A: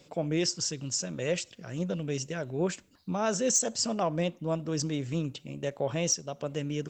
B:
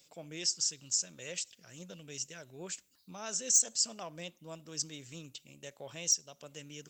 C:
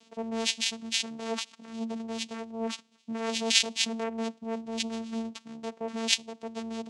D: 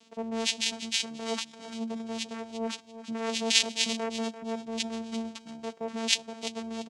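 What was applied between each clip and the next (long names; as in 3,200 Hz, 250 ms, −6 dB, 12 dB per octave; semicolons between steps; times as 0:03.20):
first-order pre-emphasis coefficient 0.9; level +2 dB
channel vocoder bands 4, saw 226 Hz; level +5.5 dB
repeating echo 342 ms, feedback 25%, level −12.5 dB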